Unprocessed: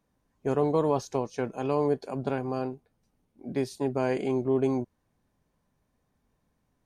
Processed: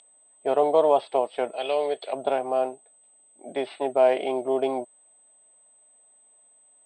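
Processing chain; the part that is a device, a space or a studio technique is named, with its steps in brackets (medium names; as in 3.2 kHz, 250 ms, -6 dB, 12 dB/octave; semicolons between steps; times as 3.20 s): 1.56–2.13 s: graphic EQ 125/250/1000/2000/4000/8000 Hz -6/-8/-9/+3/+8/+11 dB; toy sound module (decimation joined by straight lines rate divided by 4×; class-D stage that switches slowly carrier 8.2 kHz; cabinet simulation 640–3900 Hz, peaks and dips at 640 Hz +9 dB, 1.1 kHz -6 dB, 1.6 kHz -9 dB, 2.4 kHz -3 dB, 3.4 kHz +10 dB); trim +9 dB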